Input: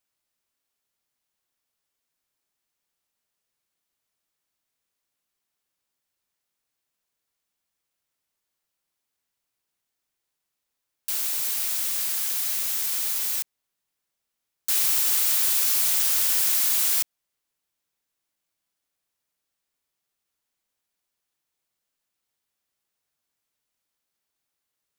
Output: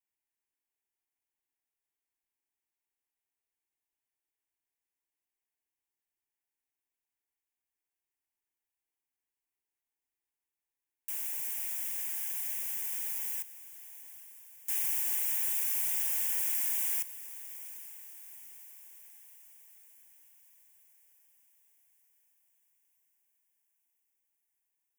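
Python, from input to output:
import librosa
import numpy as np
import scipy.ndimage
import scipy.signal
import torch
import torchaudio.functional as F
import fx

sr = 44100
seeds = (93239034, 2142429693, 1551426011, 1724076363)

y = fx.fixed_phaser(x, sr, hz=850.0, stages=8)
y = fx.echo_diffused(y, sr, ms=835, feedback_pct=57, wet_db=-15.0)
y = y * librosa.db_to_amplitude(-8.5)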